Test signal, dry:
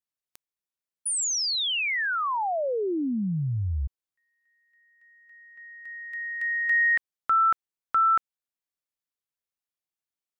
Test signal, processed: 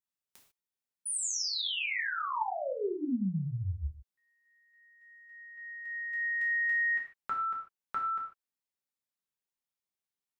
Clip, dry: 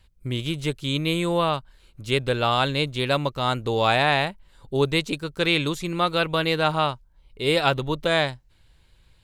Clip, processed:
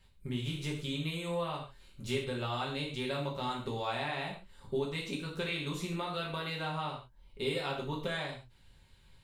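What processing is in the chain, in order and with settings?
compressor 6:1, threshold -30 dBFS; non-linear reverb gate 0.17 s falling, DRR -3 dB; gain -7 dB

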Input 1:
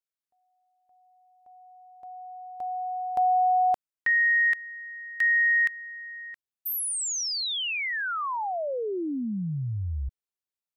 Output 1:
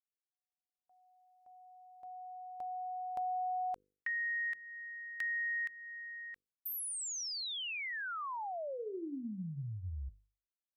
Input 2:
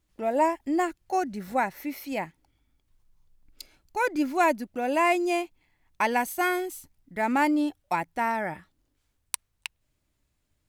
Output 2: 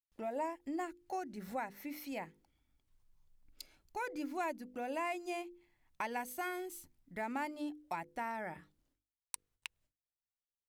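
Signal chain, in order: gate with hold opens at -60 dBFS, closes at -63 dBFS, hold 0.134 s, range -32 dB; notches 50/100/150/200/250/300/350/400/450/500 Hz; compressor 2:1, threshold -36 dBFS; gain -6 dB

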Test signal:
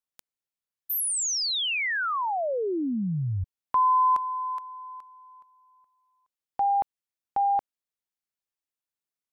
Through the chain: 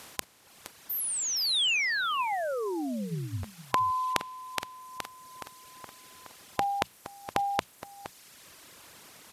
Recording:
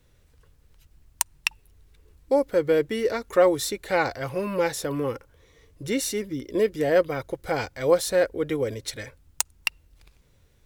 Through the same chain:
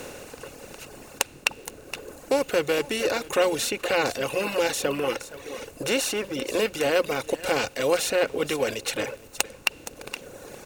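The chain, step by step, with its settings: per-bin compression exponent 0.4; on a send: echo 0.468 s -10.5 dB; on the sum: dynamic EQ 3100 Hz, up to +6 dB, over -37 dBFS, Q 1.1; notches 60/120/180 Hz; reverb removal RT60 1.6 s; gain -5.5 dB

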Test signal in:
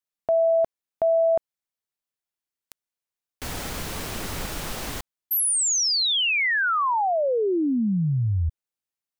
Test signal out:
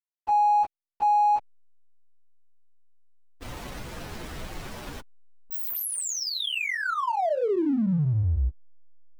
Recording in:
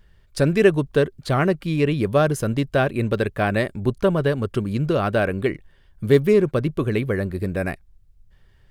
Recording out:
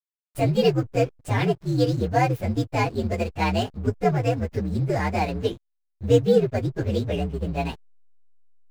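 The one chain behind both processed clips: inharmonic rescaling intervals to 124%; backlash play -37 dBFS

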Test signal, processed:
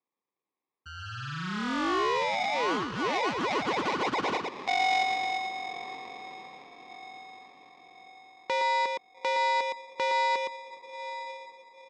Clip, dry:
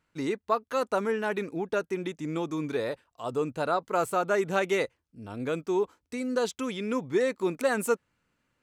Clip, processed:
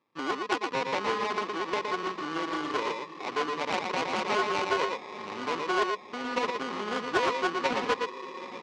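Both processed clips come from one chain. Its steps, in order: on a send: diffused feedback echo 0.876 s, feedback 47%, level -15 dB; on the sum: sample-and-hold 30×; speaker cabinet 300–5300 Hz, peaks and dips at 640 Hz -9 dB, 1100 Hz +9 dB, 2400 Hz +3 dB; echo 0.116 s -4.5 dB; in parallel at -2.5 dB: compressor, threshold -38 dBFS; on the sum: Doppler distortion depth 0.3 ms; gain -3 dB

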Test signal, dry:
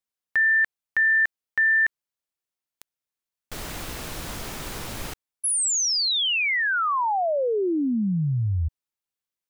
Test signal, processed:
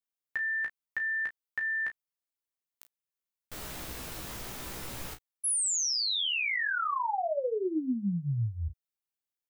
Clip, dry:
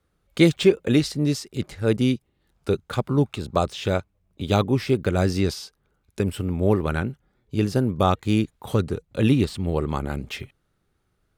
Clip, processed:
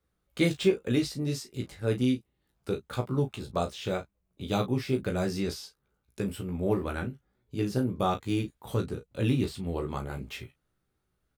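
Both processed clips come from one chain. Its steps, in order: high shelf 12000 Hz +6.5 dB; early reflections 16 ms -4.5 dB, 35 ms -9 dB, 50 ms -16.5 dB; gain -9 dB

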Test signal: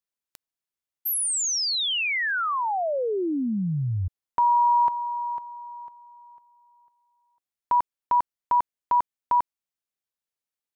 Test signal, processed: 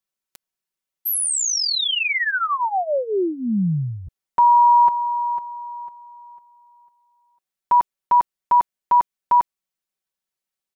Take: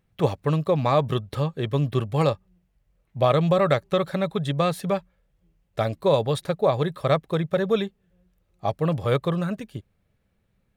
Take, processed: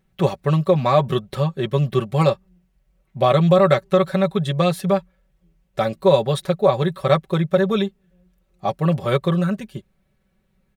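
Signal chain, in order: comb 5.3 ms, depth 72%; gain +2 dB

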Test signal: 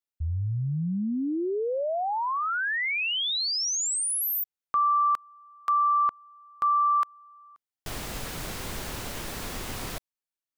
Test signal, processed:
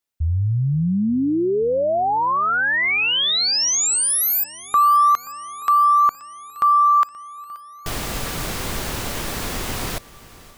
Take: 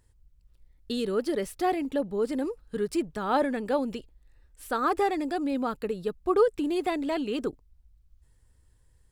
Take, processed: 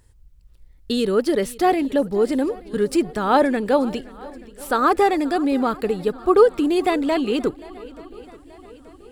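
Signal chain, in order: swung echo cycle 0.88 s, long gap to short 1.5:1, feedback 50%, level -21 dB; gain +8.5 dB

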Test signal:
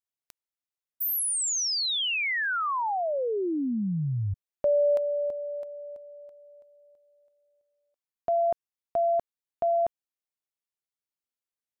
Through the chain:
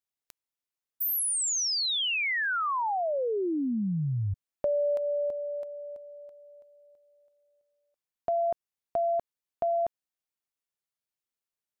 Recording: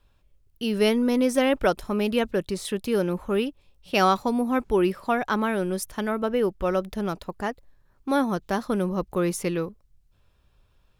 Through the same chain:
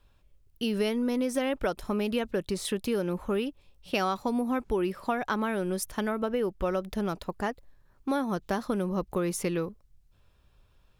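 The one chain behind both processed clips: compressor 5:1, threshold -25 dBFS

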